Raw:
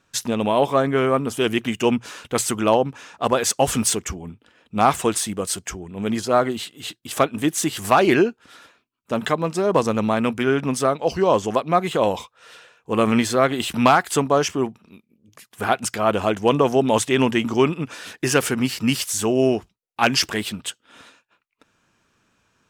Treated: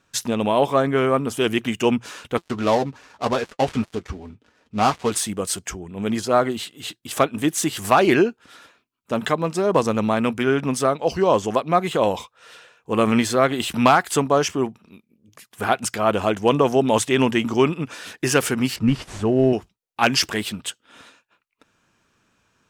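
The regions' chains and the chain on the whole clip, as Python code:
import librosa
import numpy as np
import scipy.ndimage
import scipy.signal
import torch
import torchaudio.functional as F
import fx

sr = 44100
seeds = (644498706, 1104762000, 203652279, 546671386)

y = fx.chain(x, sr, fx.dead_time(dead_ms=0.13),
    fx.air_absorb(metres=67.0),
    fx.notch_comb(f0_hz=170.0), at=(2.37, 5.11))
y = fx.chain(y, sr, fx.cvsd(bps=64000),
    fx.lowpass(hz=1200.0, slope=6),
    fx.low_shelf(hz=110.0, db=12.0), at=(18.76, 19.53))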